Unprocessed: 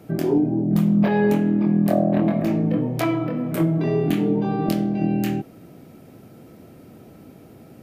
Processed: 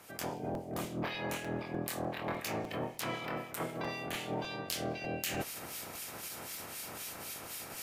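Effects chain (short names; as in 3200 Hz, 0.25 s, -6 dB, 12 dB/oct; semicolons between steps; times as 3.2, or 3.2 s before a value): spectral limiter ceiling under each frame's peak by 26 dB; HPF 67 Hz 24 dB/oct; bell 8200 Hz +9.5 dB 2 oct; reverse; compressor 6:1, threshold -34 dBFS, peak gain reduction 22 dB; reverse; harmonic tremolo 3.9 Hz, depth 70%, crossover 1900 Hz; added harmonics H 2 -9 dB, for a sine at -12.5 dBFS; in parallel at -5 dB: overloaded stage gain 30.5 dB; on the sum: crackling interface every 0.30 s, samples 256, repeat, from 0.54; gain -3 dB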